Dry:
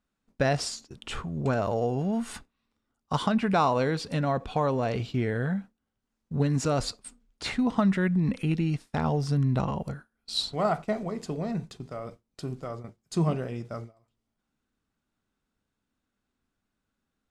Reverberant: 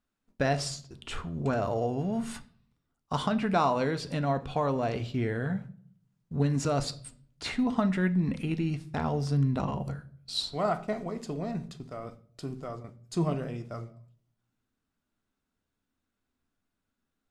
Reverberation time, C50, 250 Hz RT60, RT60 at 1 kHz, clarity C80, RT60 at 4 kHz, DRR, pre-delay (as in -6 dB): 0.50 s, 17.0 dB, 0.70 s, 0.45 s, 21.5 dB, 0.40 s, 10.0 dB, 3 ms